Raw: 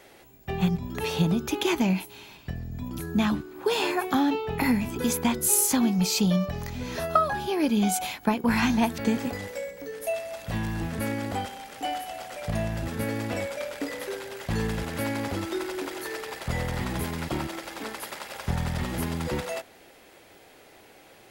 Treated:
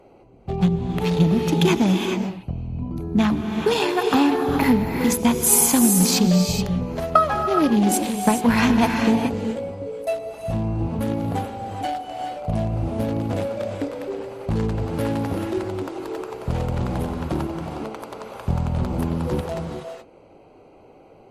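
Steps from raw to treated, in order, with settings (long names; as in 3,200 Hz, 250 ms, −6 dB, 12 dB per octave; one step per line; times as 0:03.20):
adaptive Wiener filter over 25 samples
reverb whose tail is shaped and stops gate 450 ms rising, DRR 3.5 dB
level +6 dB
MP3 56 kbit/s 48,000 Hz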